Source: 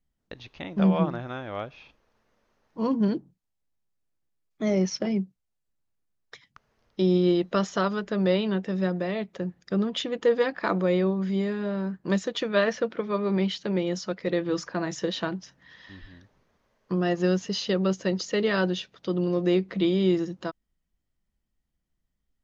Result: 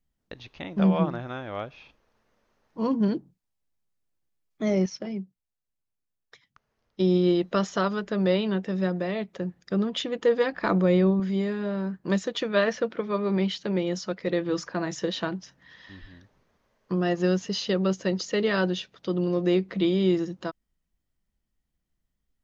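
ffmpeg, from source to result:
ffmpeg -i in.wav -filter_complex "[0:a]asettb=1/sr,asplit=3[link_01][link_02][link_03];[link_01]atrim=end=10.534[link_04];[link_02]atrim=start=10.53:end=11.2,asetpts=PTS-STARTPTS,afade=type=in:duration=0.004:curve=qsin,afade=type=out:start_time=0.666:duration=0.004:curve=qsin,lowshelf=frequency=170:gain=10.5[link_05];[link_03]atrim=start=11.196[link_06];[link_04][link_05]acrossfade=duration=0.004:curve1=hsin:curve2=qsin[link_07];[link_07][link_06]acrossfade=duration=0.004:curve1=qsin:curve2=hsin,asplit=3[link_08][link_09][link_10];[link_08]atrim=end=4.862[link_11];[link_09]atrim=start=4.858:end=7.002,asetpts=PTS-STARTPTS,volume=-6.5dB[link_12];[link_10]atrim=start=6.998[link_13];[link_11][link_12]acrossfade=duration=0.004:curve1=hsin:curve2=hsin[link_14];[link_14][link_13]acrossfade=duration=0.004:curve1=hsin:curve2=hsin" out.wav

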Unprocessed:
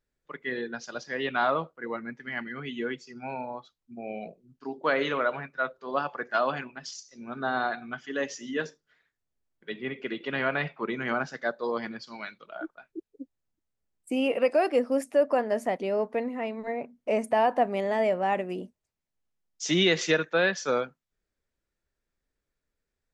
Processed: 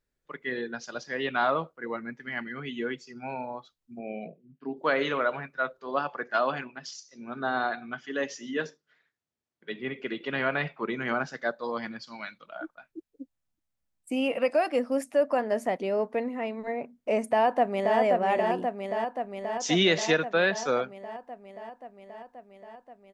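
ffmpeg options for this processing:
ffmpeg -i in.wav -filter_complex "[0:a]asettb=1/sr,asplit=3[link_01][link_02][link_03];[link_01]atrim=end=3.994[link_04];[link_02]atrim=start=3.99:end=4.77,asetpts=PTS-STARTPTS,afade=type=in:duration=0.004:curve=qsin,afade=type=out:start_time=0.776:duration=0.004:curve=qsin,highpass=100,equalizer=frequency=100:width_type=q:width=4:gain=-9,equalizer=frequency=150:width_type=q:width=4:gain=8,equalizer=frequency=260:width_type=q:width=4:gain=3,equalizer=frequency=880:width_type=q:width=4:gain=-7,equalizer=frequency=1300:width_type=q:width=4:gain=-7,lowpass=frequency=3100:width=0.5412,lowpass=frequency=3100:width=1.3066[link_05];[link_03]atrim=start=4.766[link_06];[link_04][link_05]acrossfade=duration=0.004:curve1=hsin:curve2=qsin[link_07];[link_07][link_06]acrossfade=duration=0.004:curve1=qsin:curve2=hsin,asettb=1/sr,asplit=3[link_08][link_09][link_10];[link_08]atrim=end=5.874[link_11];[link_09]atrim=start=5.87:end=9.79,asetpts=PTS-STARTPTS,afade=type=in:duration=0.004:curve=qsin,afade=type=out:start_time=3.916:duration=0.004:curve=qsin,highpass=110,lowpass=7100[link_12];[link_10]atrim=start=9.786[link_13];[link_11][link_12]acrossfade=duration=0.004:curve1=hsin:curve2=qsin[link_14];[link_14][link_13]acrossfade=duration=0.004:curve1=qsin:curve2=hsin,asettb=1/sr,asplit=3[link_15][link_16][link_17];[link_15]atrim=end=11.554[link_18];[link_16]atrim=start=11.55:end=15.42,asetpts=PTS-STARTPTS,afade=type=in:duration=0.004:curve=qsin,afade=type=out:start_time=3.866:duration=0.004:curve=qsin,equalizer=frequency=400:width=5.4:gain=-14[link_19];[link_17]atrim=start=15.416[link_20];[link_18][link_19]acrossfade=duration=0.004:curve1=hsin:curve2=qsin[link_21];[link_21][link_20]acrossfade=duration=0.004:curve1=qsin:curve2=hsin,asplit=2[link_22][link_23];[link_23]afade=type=in:start_time=17.25:duration=0.01,afade=type=out:start_time=17.98:duration=0.01,aecho=0:1:530|1060|1590|2120|2650|3180|3710|4240|4770|5300|5830|6360:0.668344|0.501258|0.375943|0.281958|0.211468|0.158601|0.118951|0.0892131|0.0669099|0.0501824|0.0376368|0.0282276[link_24];[link_22][link_24]amix=inputs=2:normalize=0" out.wav

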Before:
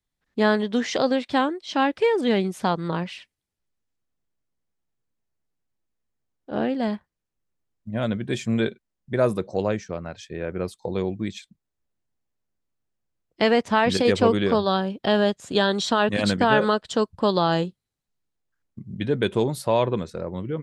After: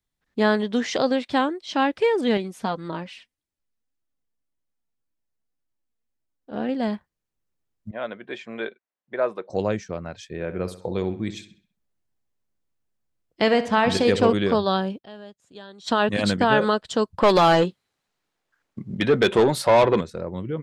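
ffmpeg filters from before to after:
ffmpeg -i in.wav -filter_complex "[0:a]asettb=1/sr,asplit=3[link_01][link_02][link_03];[link_01]atrim=end=2.374[link_04];[link_02]atrim=start=2.37:end=6.69,asetpts=PTS-STARTPTS,afade=type=in:duration=0.004:curve=qsin,afade=type=out:start_time=4.316:duration=0.004:curve=qsin,flanger=delay=3:depth=1.5:regen=46:speed=1.8:shape=triangular[link_05];[link_03]atrim=start=6.686[link_06];[link_04][link_05]acrossfade=duration=0.004:curve1=hsin:curve2=qsin[link_07];[link_07][link_06]acrossfade=duration=0.004:curve1=qsin:curve2=hsin,asettb=1/sr,asplit=3[link_08][link_09][link_10];[link_08]atrim=end=7.914[link_11];[link_09]atrim=start=7.91:end=9.5,asetpts=PTS-STARTPTS,afade=type=in:duration=0.004:curve=qsin,afade=type=out:start_time=1.586:duration=0.004:curve=qsin,highpass=530,lowpass=2500[link_12];[link_10]atrim=start=9.496[link_13];[link_11][link_12]acrossfade=duration=0.004:curve1=hsin:curve2=qsin[link_14];[link_14][link_13]acrossfade=duration=0.004:curve1=qsin:curve2=hsin,asettb=1/sr,asplit=3[link_15][link_16][link_17];[link_15]atrim=end=10.304[link_18];[link_16]atrim=start=10.3:end=14.33,asetpts=PTS-STARTPTS,afade=type=in:duration=0.004:curve=qsin,afade=type=out:start_time=4.026:duration=0.004:curve=qsin,asplit=2[link_19][link_20];[link_20]adelay=65,lowpass=frequency=4800:poles=1,volume=-12dB,asplit=2[link_21][link_22];[link_22]adelay=65,lowpass=frequency=4800:poles=1,volume=0.45,asplit=2[link_23][link_24];[link_24]adelay=65,lowpass=frequency=4800:poles=1,volume=0.45,asplit=2[link_25][link_26];[link_26]adelay=65,lowpass=frequency=4800:poles=1,volume=0.45,asplit=2[link_27][link_28];[link_28]adelay=65,lowpass=frequency=4800:poles=1,volume=0.45[link_29];[link_19][link_21][link_23][link_25][link_27][link_29]amix=inputs=6:normalize=0,atrim=end_sample=177723[link_30];[link_17]atrim=start=14.326[link_31];[link_18][link_30]acrossfade=duration=0.004:curve1=hsin:curve2=qsin[link_32];[link_32][link_31]acrossfade=duration=0.004:curve1=qsin:curve2=hsin,asettb=1/sr,asplit=3[link_33][link_34][link_35];[link_33]atrim=end=17.184[link_36];[link_34]atrim=start=17.18:end=20.01,asetpts=PTS-STARTPTS,afade=type=in:duration=0.004:curve=qsin,afade=type=out:start_time=2.826:duration=0.004:curve=qsin,asplit=2[link_37][link_38];[link_38]highpass=frequency=720:poles=1,volume=21dB,asoftclip=type=tanh:threshold=-7dB[link_39];[link_37][link_39]amix=inputs=2:normalize=0,lowpass=frequency=2600:poles=1,volume=-6dB[link_40];[link_35]atrim=start=20.006[link_41];[link_36][link_40]acrossfade=duration=0.004:curve1=hsin:curve2=qsin[link_42];[link_42][link_41]acrossfade=duration=0.004:curve1=qsin:curve2=hsin,asplit=3[link_43][link_44][link_45];[link_43]atrim=end=15.1,asetpts=PTS-STARTPTS,afade=type=out:start_time=14.98:duration=0.12:curve=exp:silence=0.0841395[link_46];[link_44]atrim=start=15.1:end=15.76,asetpts=PTS-STARTPTS,volume=-21.5dB[link_47];[link_45]atrim=start=15.76,asetpts=PTS-STARTPTS,afade=type=in:duration=0.12:curve=exp:silence=0.0841395[link_48];[link_46][link_47][link_48]concat=n=3:v=0:a=1" out.wav

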